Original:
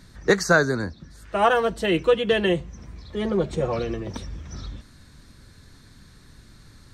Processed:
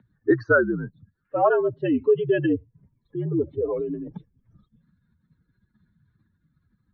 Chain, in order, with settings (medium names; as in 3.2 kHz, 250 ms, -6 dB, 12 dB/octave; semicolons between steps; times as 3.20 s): spectral contrast enhancement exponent 2.2; mistuned SSB -64 Hz 200–3200 Hz